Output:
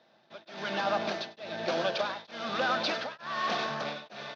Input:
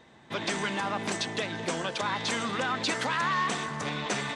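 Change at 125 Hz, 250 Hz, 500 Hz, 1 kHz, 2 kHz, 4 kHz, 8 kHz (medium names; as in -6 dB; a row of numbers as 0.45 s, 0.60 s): -9.0 dB, -5.5 dB, +1.5 dB, -2.5 dB, -3.5 dB, -2.5 dB, -14.0 dB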